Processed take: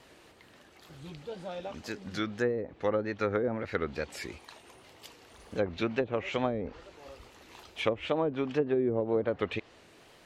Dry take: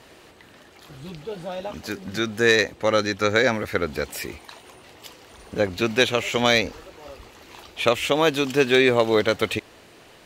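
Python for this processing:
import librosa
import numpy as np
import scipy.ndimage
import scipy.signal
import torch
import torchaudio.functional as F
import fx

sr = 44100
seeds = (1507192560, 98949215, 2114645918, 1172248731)

y = fx.wow_flutter(x, sr, seeds[0], rate_hz=2.1, depth_cents=94.0)
y = fx.env_lowpass_down(y, sr, base_hz=420.0, full_db=-13.5)
y = y * 10.0 ** (-7.5 / 20.0)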